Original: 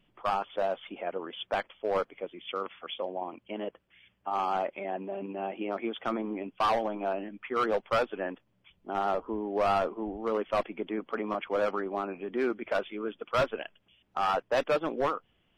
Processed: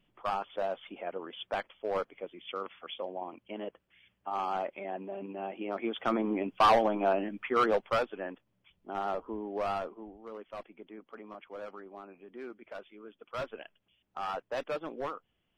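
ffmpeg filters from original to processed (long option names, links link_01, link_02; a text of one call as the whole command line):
ffmpeg -i in.wav -af "volume=10.5dB,afade=type=in:start_time=5.63:duration=0.74:silence=0.421697,afade=type=out:start_time=7.36:duration=0.75:silence=0.375837,afade=type=out:start_time=9.46:duration=0.73:silence=0.316228,afade=type=in:start_time=13.11:duration=0.5:silence=0.473151" out.wav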